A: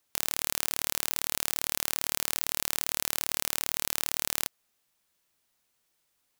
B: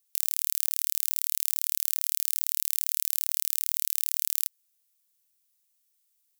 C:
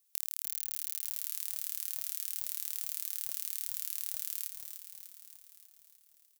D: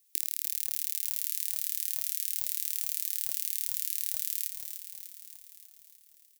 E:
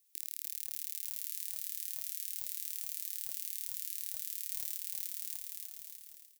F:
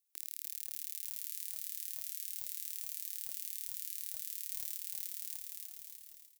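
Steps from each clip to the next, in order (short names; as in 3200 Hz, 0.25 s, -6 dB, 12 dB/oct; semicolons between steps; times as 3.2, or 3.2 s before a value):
pre-emphasis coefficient 0.97
compressor 6:1, threshold -30 dBFS, peak gain reduction 10.5 dB; on a send: frequency-shifting echo 0.298 s, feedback 62%, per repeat -38 Hz, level -8 dB
EQ curve 200 Hz 0 dB, 340 Hz +11 dB, 1000 Hz -22 dB, 1800 Hz +3 dB; on a send at -18.5 dB: reverb RT60 0.65 s, pre-delay 6 ms; on the sum: gain +2 dB
AGC gain up to 12 dB; limiter -10.5 dBFS, peak gain reduction 9.5 dB; gain -4 dB
gate -57 dBFS, range -8 dB; feedback echo 0.38 s, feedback 55%, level -18.5 dB; gain -2 dB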